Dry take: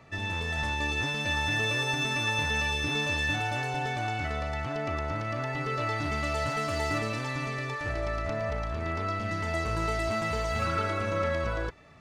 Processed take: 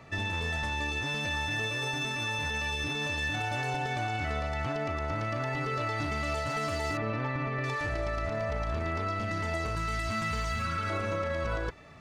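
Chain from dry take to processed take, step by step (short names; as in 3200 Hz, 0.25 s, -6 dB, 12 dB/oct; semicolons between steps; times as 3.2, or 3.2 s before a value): 6.97–7.64 LPF 2000 Hz 12 dB/oct; 9.75–10.9 band shelf 540 Hz -9 dB; limiter -26.5 dBFS, peak gain reduction 10 dB; gain +3 dB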